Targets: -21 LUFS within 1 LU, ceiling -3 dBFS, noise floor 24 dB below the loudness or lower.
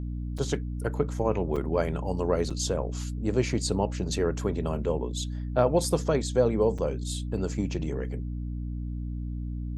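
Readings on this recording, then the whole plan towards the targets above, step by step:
dropouts 4; longest dropout 5.4 ms; hum 60 Hz; harmonics up to 300 Hz; hum level -30 dBFS; loudness -29.0 LUFS; peak -9.0 dBFS; loudness target -21.0 LUFS
-> interpolate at 0.38/1.56/2.5/6.78, 5.4 ms; de-hum 60 Hz, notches 5; gain +8 dB; limiter -3 dBFS

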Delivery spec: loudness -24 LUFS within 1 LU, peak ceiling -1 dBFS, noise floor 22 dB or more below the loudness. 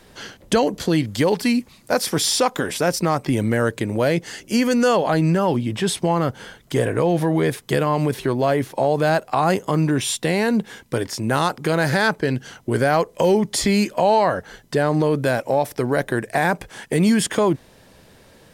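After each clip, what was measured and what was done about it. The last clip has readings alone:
loudness -20.5 LUFS; peak -5.5 dBFS; loudness target -24.0 LUFS
-> gain -3.5 dB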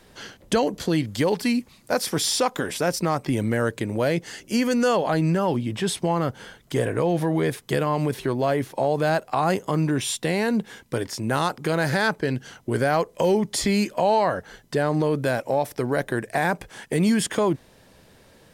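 loudness -24.0 LUFS; peak -9.0 dBFS; noise floor -54 dBFS

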